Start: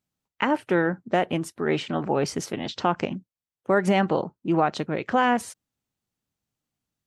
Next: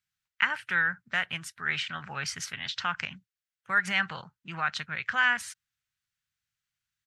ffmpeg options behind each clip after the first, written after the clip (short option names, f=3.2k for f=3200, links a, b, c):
-af "firequalizer=gain_entry='entry(120,0);entry(310,-22);entry(1500,13);entry(2600,10);entry(9800,4)':delay=0.05:min_phase=1,volume=-7.5dB"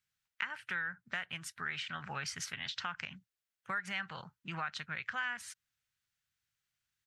-af "acompressor=threshold=-38dB:ratio=3"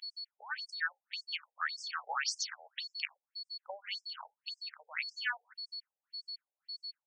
-af "aeval=exprs='val(0)+0.00562*sin(2*PI*4400*n/s)':c=same,afftfilt=real='re*between(b*sr/1024,600*pow(7000/600,0.5+0.5*sin(2*PI*1.8*pts/sr))/1.41,600*pow(7000/600,0.5+0.5*sin(2*PI*1.8*pts/sr))*1.41)':imag='im*between(b*sr/1024,600*pow(7000/600,0.5+0.5*sin(2*PI*1.8*pts/sr))/1.41,600*pow(7000/600,0.5+0.5*sin(2*PI*1.8*pts/sr))*1.41)':win_size=1024:overlap=0.75,volume=6.5dB"